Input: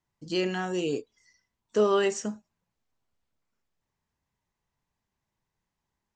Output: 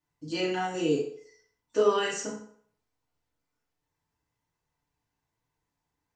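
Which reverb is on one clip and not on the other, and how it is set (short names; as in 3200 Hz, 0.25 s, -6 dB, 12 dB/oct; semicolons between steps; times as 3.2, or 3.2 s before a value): FDN reverb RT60 0.59 s, low-frequency decay 0.75×, high-frequency decay 0.75×, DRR -6 dB; gain -6 dB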